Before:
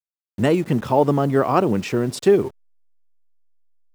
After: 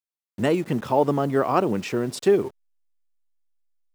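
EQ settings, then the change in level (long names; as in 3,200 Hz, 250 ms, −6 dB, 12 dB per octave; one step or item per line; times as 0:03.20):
low-shelf EQ 130 Hz −8 dB
−2.5 dB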